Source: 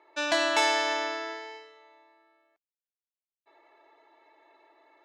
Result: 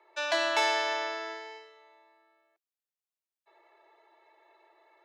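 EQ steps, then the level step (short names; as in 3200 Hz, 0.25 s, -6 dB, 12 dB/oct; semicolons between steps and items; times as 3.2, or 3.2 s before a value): dynamic EQ 8300 Hz, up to -6 dB, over -50 dBFS, Q 1.6; steep high-pass 330 Hz 96 dB/oct; -2.0 dB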